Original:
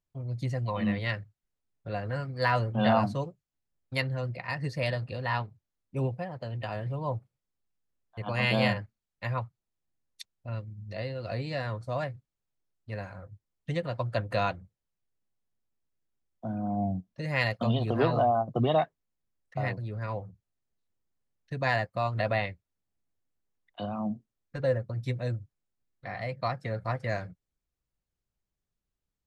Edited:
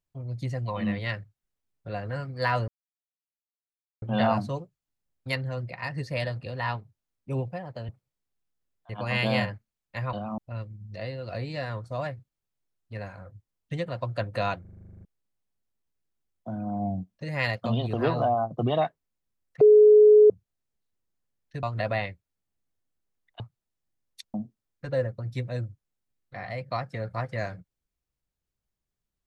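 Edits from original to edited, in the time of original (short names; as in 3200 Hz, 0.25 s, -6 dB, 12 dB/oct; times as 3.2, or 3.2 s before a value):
2.68 insert silence 1.34 s
6.55–7.17 cut
9.41–10.35 swap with 23.8–24.05
14.58 stutter in place 0.04 s, 11 plays
19.58–20.27 bleep 423 Hz -11 dBFS
21.6–22.03 cut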